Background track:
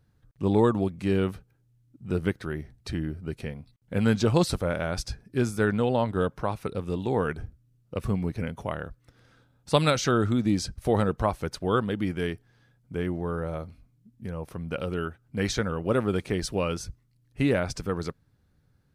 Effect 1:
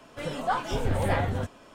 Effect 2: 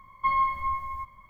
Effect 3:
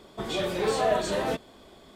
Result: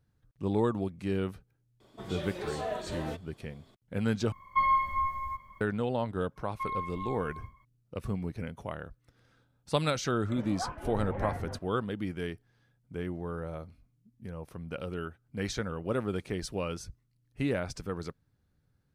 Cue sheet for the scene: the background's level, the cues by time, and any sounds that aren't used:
background track -6.5 dB
1.8 add 3 -10.5 dB
4.32 replace with 2 -1 dB
6.36 add 2 -11 dB + sustainer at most 120 dB/s
10.12 add 1 -10 dB + LPF 2200 Hz 24 dB/oct

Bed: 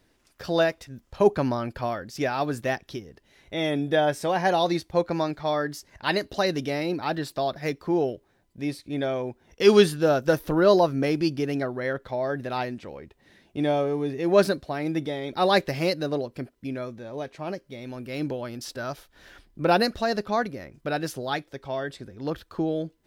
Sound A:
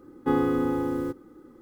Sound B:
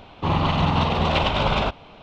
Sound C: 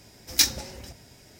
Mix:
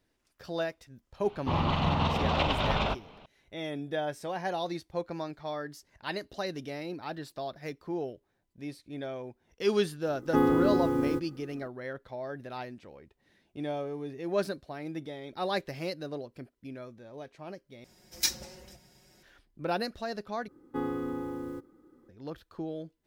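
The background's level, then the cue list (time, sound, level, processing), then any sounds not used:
bed -10.5 dB
1.24 add B -7 dB
10.07 add A -0.5 dB
17.84 replace with C -10 dB + comb 5.5 ms, depth 71%
20.48 replace with A -9.5 dB

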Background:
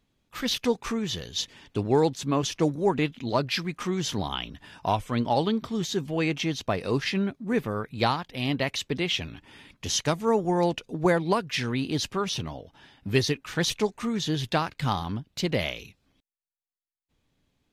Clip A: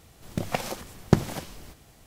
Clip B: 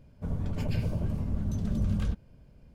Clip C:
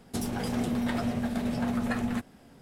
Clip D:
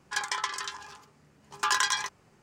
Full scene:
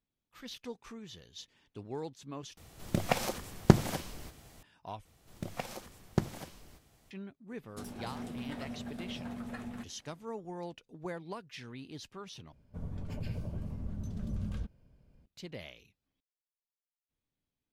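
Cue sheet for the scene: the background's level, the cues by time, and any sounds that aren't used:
background -18 dB
2.57 replace with A -1 dB
5.05 replace with A -10.5 dB
7.63 add C -12.5 dB
12.52 replace with B -8.5 dB
not used: D

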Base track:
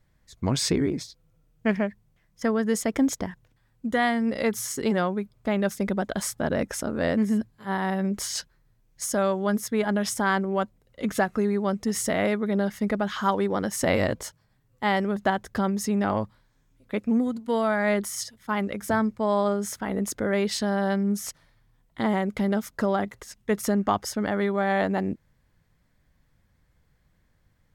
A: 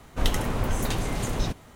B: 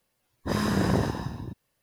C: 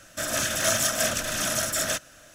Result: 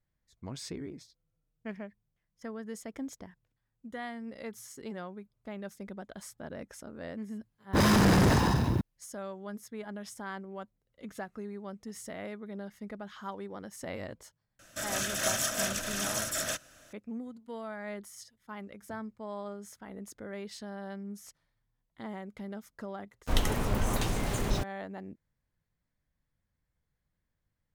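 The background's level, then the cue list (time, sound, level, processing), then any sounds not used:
base track -16.5 dB
7.28 add B -8 dB + sample leveller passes 5
14.59 add C -6.5 dB
23.11 add A -3 dB + sample gate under -36.5 dBFS

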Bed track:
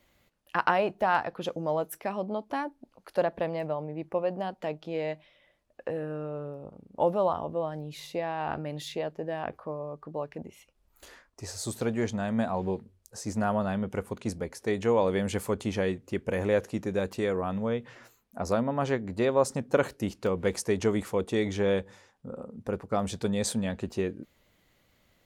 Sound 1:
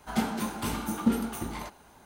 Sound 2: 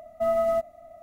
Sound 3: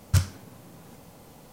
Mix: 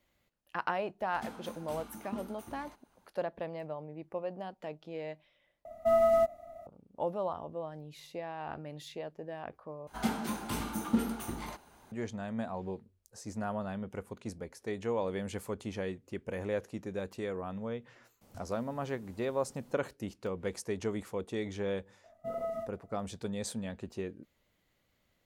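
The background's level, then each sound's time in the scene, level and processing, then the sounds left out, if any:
bed track -8.5 dB
1.06 add 1 -15.5 dB
5.65 replace with 2 -1 dB
9.87 replace with 1 -4 dB
18.21 add 3 -12 dB + compressor 3:1, threshold -42 dBFS
22.04 add 2 -11 dB + chorus 2.3 Hz, delay 19.5 ms, depth 3.2 ms

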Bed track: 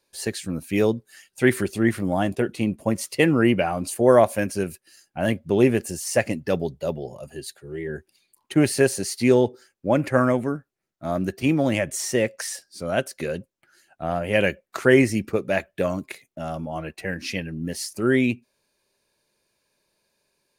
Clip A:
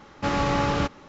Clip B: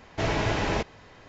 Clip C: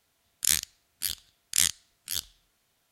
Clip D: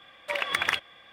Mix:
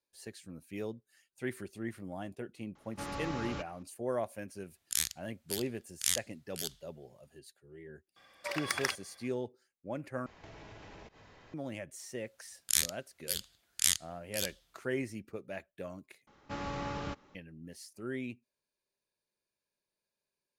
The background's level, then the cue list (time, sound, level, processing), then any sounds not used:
bed track -19 dB
2.75 add A -16 dB + high shelf 5500 Hz +6 dB
4.48 add C -7.5 dB
8.16 add D -7 dB + resonant high shelf 4000 Hz +6.5 dB, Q 3
10.26 replace with B -7 dB + compressor 10:1, threshold -41 dBFS
12.26 add C -4.5 dB
16.27 replace with A -14.5 dB

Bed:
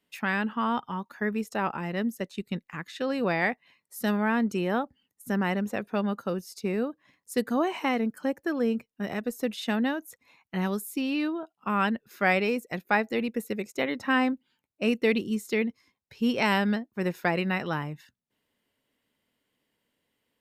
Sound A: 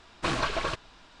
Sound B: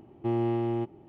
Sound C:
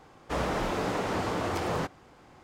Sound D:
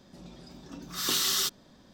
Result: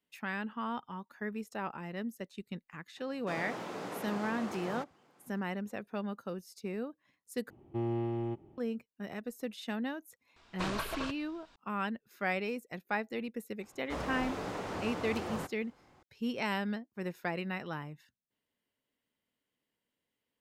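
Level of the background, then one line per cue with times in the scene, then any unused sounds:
bed -9.5 dB
2.97 add C -10.5 dB + HPF 140 Hz 24 dB/oct
7.5 replace with B -7.5 dB + low shelf 130 Hz +6.5 dB
10.36 add A -8.5 dB
13.6 add C -8.5 dB
not used: D

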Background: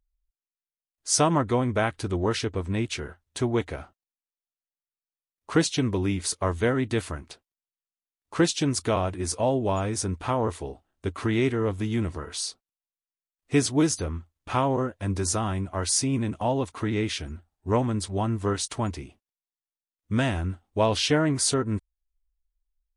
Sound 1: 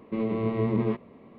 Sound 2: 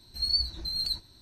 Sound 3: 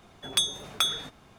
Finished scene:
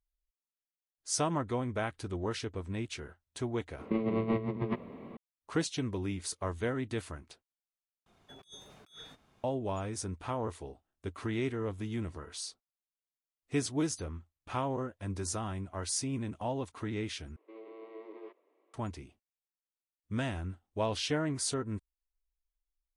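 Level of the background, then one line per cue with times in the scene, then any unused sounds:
background -9.5 dB
3.79 add 1 -0.5 dB + negative-ratio compressor -30 dBFS, ratio -0.5
8.06 replace with 3 -17.5 dB + negative-ratio compressor -34 dBFS, ratio -0.5
17.36 replace with 1 -17.5 dB + Chebyshev high-pass 320 Hz, order 5
not used: 2

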